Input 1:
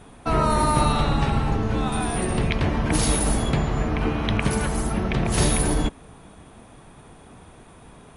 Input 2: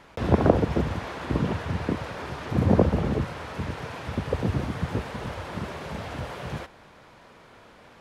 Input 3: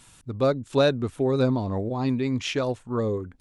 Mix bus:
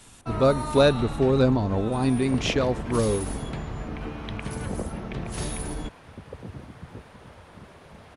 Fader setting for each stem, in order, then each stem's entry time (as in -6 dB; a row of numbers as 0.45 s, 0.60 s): -11.0 dB, -13.5 dB, +2.0 dB; 0.00 s, 2.00 s, 0.00 s